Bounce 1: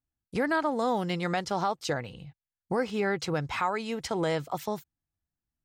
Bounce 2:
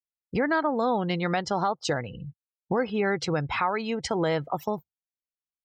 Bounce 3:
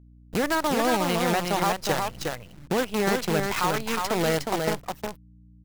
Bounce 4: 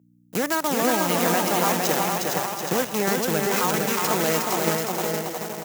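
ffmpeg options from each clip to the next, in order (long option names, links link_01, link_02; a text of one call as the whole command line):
ffmpeg -i in.wav -filter_complex "[0:a]afftdn=noise_reduction=34:noise_floor=-43,asplit=2[link_01][link_02];[link_02]acompressor=threshold=-36dB:ratio=6,volume=1.5dB[link_03];[link_01][link_03]amix=inputs=2:normalize=0" out.wav
ffmpeg -i in.wav -af "acrusher=bits=5:dc=4:mix=0:aa=0.000001,aeval=exprs='val(0)+0.00316*(sin(2*PI*60*n/s)+sin(2*PI*2*60*n/s)/2+sin(2*PI*3*60*n/s)/3+sin(2*PI*4*60*n/s)/4+sin(2*PI*5*60*n/s)/5)':channel_layout=same,aecho=1:1:361:0.631" out.wav
ffmpeg -i in.wav -af "aexciter=amount=1.2:drive=9.5:freq=5800,highpass=frequency=140:width=0.5412,highpass=frequency=140:width=1.3066,aecho=1:1:460|736|901.6|1001|1061:0.631|0.398|0.251|0.158|0.1" out.wav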